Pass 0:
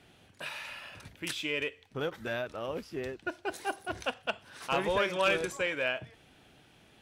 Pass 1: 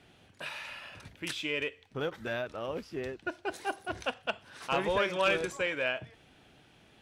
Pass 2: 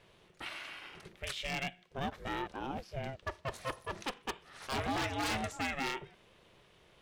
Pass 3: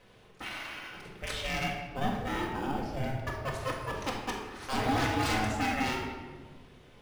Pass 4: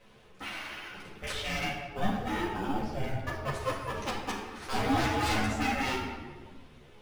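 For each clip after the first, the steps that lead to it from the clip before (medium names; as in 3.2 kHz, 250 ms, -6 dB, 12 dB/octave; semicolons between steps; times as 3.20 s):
treble shelf 11 kHz -8.5 dB
wavefolder -25.5 dBFS; ring modulator 270 Hz
in parallel at -10 dB: sample-and-hold 11×; on the sum: reverberation RT60 1.4 s, pre-delay 4 ms, DRR -1.5 dB
three-phase chorus; trim +3.5 dB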